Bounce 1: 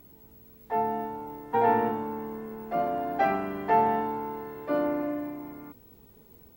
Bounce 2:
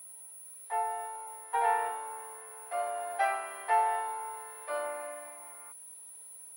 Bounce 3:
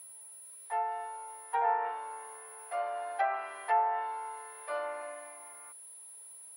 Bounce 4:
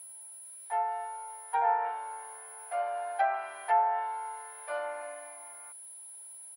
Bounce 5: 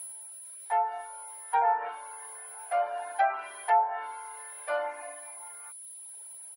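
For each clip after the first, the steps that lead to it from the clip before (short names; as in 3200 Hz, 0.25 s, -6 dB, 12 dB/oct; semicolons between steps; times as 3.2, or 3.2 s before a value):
Bessel high-pass 900 Hz, order 6; whine 10000 Hz -47 dBFS
treble ducked by the level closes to 1500 Hz, closed at -24.5 dBFS; low shelf 320 Hz -4.5 dB
comb 1.3 ms, depth 39%
in parallel at +1 dB: limiter -27 dBFS, peak gain reduction 11 dB; on the sum: reverb removal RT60 1.1 s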